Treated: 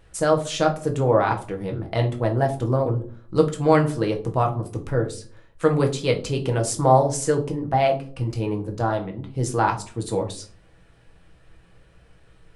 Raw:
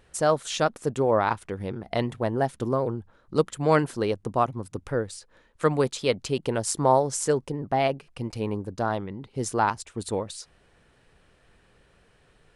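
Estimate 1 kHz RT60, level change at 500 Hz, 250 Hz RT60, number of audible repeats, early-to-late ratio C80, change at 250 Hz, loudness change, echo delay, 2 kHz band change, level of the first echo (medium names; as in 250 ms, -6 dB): 0.40 s, +3.5 dB, 0.55 s, no echo, 17.5 dB, +4.0 dB, +3.5 dB, no echo, +2.0 dB, no echo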